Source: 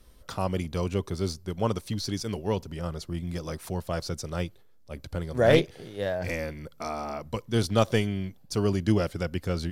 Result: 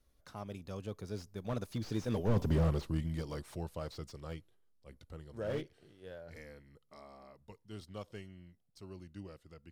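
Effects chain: Doppler pass-by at 2.51, 28 m/s, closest 3.9 m; slew limiter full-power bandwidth 5.4 Hz; gain +8.5 dB

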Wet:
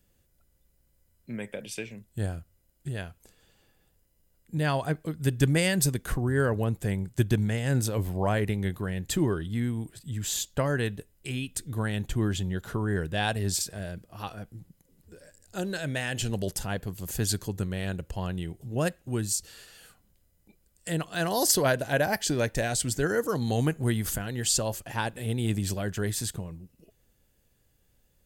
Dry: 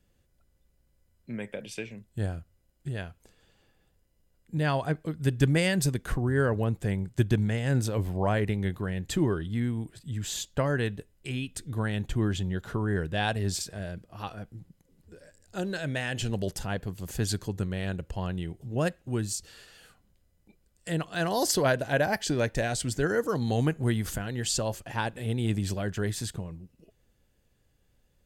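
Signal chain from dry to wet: high shelf 8400 Hz +11.5 dB

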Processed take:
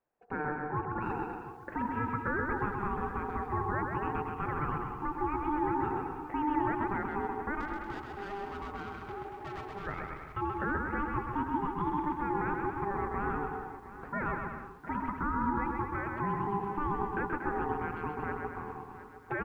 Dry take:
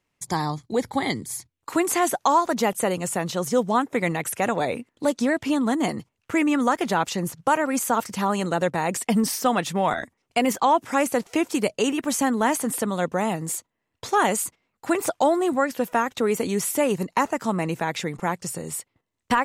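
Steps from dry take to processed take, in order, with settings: LPF 1400 Hz 24 dB/oct; de-hum 167.1 Hz, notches 5; limiter -18 dBFS, peak gain reduction 8.5 dB; 7.6–9.87 tube stage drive 31 dB, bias 0.25; ring modulator 600 Hz; bouncing-ball echo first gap 0.13 s, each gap 0.8×, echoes 5; lo-fi delay 0.715 s, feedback 35%, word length 9-bit, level -14 dB; gain -5 dB

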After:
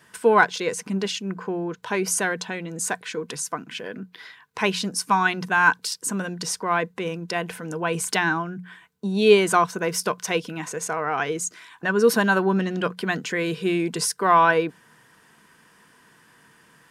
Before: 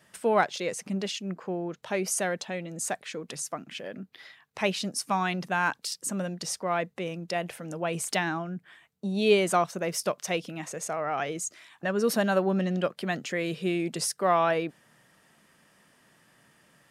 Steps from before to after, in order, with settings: bell 550 Hz -13.5 dB 0.41 oct; notches 60/120/180 Hz; small resonant body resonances 480/1000/1500 Hz, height 11 dB, ringing for 35 ms; gain +5 dB

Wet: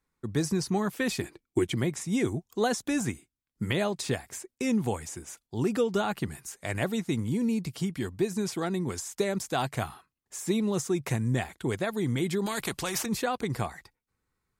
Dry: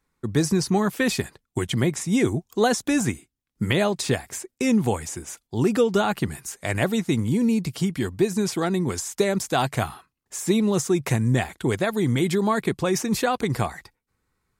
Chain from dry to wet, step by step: 1.21–1.74 small resonant body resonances 330/2300 Hz, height 17 dB -> 13 dB; 12.46–13.06 spectral compressor 2:1; gain -6.5 dB

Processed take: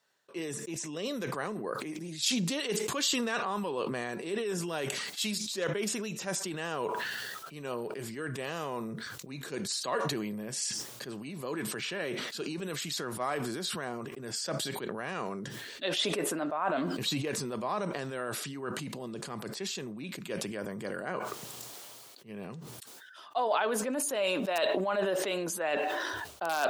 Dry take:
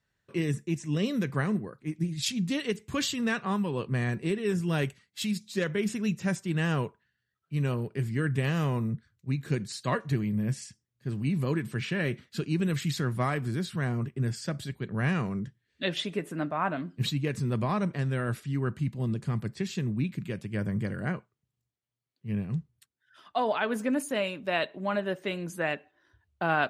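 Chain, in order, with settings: in parallel at -3.5 dB: wrapped overs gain 14.5 dB; on the sum: high shelf 7900 Hz -3.5 dB; reverse; compressor 6:1, threshold -31 dBFS, peak gain reduction 12.5 dB; reverse; HPF 520 Hz 12 dB/oct; bell 2000 Hz -8.5 dB 1.2 oct; sustainer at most 20 dB/s; gain +7 dB

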